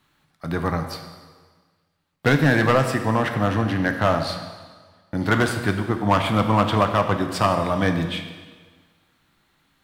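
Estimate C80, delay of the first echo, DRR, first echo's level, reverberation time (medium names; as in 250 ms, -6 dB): 9.0 dB, no echo, 6.0 dB, no echo, 1.5 s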